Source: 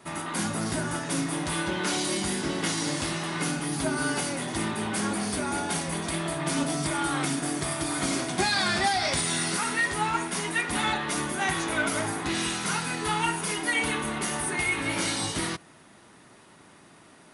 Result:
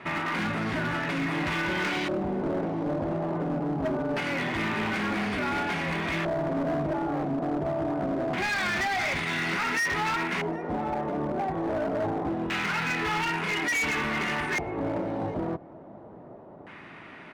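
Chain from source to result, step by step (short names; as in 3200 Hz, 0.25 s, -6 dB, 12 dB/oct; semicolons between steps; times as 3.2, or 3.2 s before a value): in parallel at 0 dB: compressor 10:1, threshold -38 dBFS, peak gain reduction 17.5 dB; on the sum: limiter -18 dBFS, peak gain reduction 7 dB; LFO low-pass square 0.24 Hz 640–2300 Hz; overloaded stage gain 24.5 dB; outdoor echo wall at 130 m, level -22 dB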